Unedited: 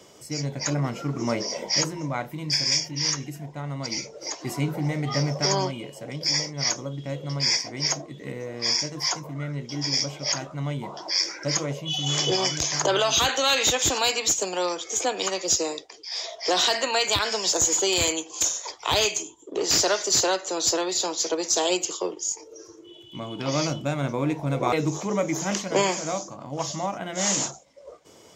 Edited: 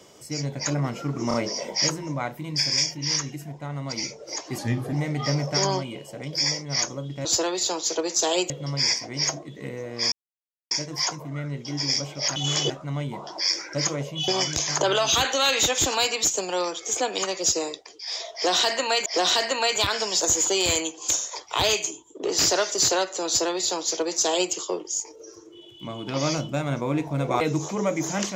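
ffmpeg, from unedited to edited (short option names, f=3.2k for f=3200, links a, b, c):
-filter_complex "[0:a]asplit=12[a][b][c][d][e][f][g][h][i][j][k][l];[a]atrim=end=1.312[m];[b]atrim=start=1.278:end=1.312[n];[c]atrim=start=1.278:end=4.524[o];[d]atrim=start=4.52:end=4.81,asetpts=PTS-STARTPTS,asetrate=36603,aresample=44100,atrim=end_sample=15408,asetpts=PTS-STARTPTS[p];[e]atrim=start=4.806:end=7.132[q];[f]atrim=start=20.588:end=21.842[r];[g]atrim=start=7.128:end=8.75,asetpts=PTS-STARTPTS,afade=t=out:st=1.618:d=0.004:c=hsin,apad=pad_dur=0.59[s];[h]atrim=start=8.75:end=10.402,asetpts=PTS-STARTPTS,afade=t=in:d=0.004:c=hsin[t];[i]atrim=start=11.978:end=12.322[u];[j]atrim=start=10.398:end=11.982[v];[k]atrim=start=12.318:end=17.102[w];[l]atrim=start=16.378[x];[m][n]acrossfade=d=0.004:c1=hsin:c2=hsin[y];[y][o]acrossfade=d=0.004:c1=hsin:c2=hsin[z];[z][p]acrossfade=d=0.004:c1=hsin:c2=hsin[aa];[aa][q]acrossfade=d=0.004:c1=hsin:c2=hsin[ab];[ab][r]acrossfade=d=0.004:c1=hsin:c2=hsin[ac];[s][t]concat=n=2:v=0:a=1[ad];[ac][ad]acrossfade=d=0.004:c1=hsin:c2=hsin[ae];[ae][u]acrossfade=d=0.004:c1=hsin:c2=hsin[af];[af][v]acrossfade=d=0.004:c1=hsin:c2=hsin[ag];[ag][w]acrossfade=d=0.004:c1=hsin:c2=hsin[ah];[ah][x]acrossfade=d=0.004:c1=hsin:c2=hsin"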